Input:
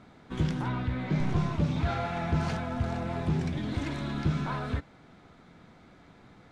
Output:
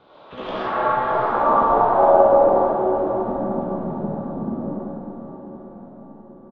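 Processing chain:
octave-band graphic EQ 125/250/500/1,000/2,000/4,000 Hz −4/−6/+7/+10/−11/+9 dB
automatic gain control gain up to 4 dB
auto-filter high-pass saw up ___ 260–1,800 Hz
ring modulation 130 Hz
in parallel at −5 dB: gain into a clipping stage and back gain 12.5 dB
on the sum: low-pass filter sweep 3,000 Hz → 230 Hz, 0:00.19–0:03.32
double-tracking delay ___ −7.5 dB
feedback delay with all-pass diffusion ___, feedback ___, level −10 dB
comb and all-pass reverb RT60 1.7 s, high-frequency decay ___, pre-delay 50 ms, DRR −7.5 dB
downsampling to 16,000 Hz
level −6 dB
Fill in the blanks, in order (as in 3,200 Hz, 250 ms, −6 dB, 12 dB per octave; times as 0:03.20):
3.1 Hz, 45 ms, 641 ms, 53%, 0.65×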